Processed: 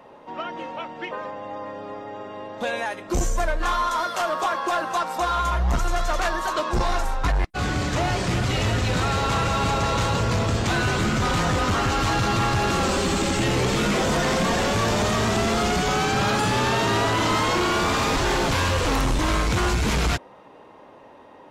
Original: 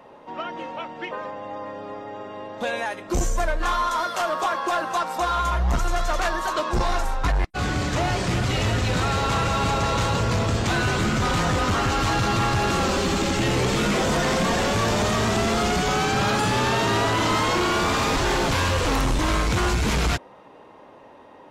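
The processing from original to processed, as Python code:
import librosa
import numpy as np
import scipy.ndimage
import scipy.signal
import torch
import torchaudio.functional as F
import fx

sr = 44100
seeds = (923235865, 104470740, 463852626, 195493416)

y = fx.peak_eq(x, sr, hz=8100.0, db=6.0, octaves=0.22, at=(12.83, 13.45))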